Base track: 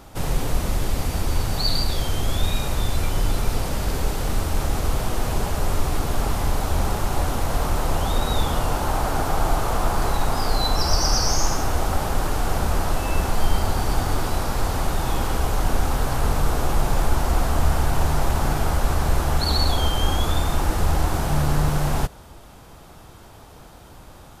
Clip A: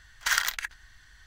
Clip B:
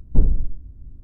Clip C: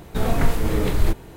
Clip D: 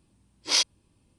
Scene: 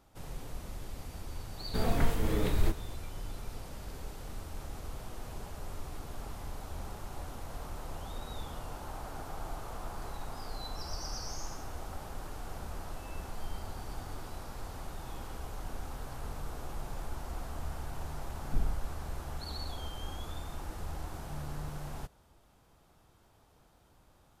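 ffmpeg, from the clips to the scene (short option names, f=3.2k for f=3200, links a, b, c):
-filter_complex "[0:a]volume=-19.5dB[a];[3:a]atrim=end=1.36,asetpts=PTS-STARTPTS,volume=-8.5dB,afade=t=in:d=0.004:c=hsin,afade=t=out:st=1.356:d=0.004:c=hsin,adelay=1590[b];[2:a]atrim=end=1.03,asetpts=PTS-STARTPTS,volume=-15.5dB,afade=t=in:d=0.004:c=hsin,afade=t=out:st=1.026:d=0.004:c=hsin,adelay=18380[c];[a][b][c]amix=inputs=3:normalize=0"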